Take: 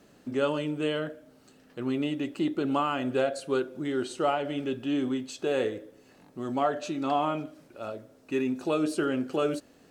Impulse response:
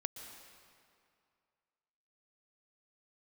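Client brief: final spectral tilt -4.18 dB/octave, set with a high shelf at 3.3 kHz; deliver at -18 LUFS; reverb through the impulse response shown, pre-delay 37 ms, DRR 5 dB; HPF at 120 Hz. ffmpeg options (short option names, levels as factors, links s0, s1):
-filter_complex "[0:a]highpass=120,highshelf=f=3300:g=8.5,asplit=2[s0][s1];[1:a]atrim=start_sample=2205,adelay=37[s2];[s1][s2]afir=irnorm=-1:irlink=0,volume=0.631[s3];[s0][s3]amix=inputs=2:normalize=0,volume=3.35"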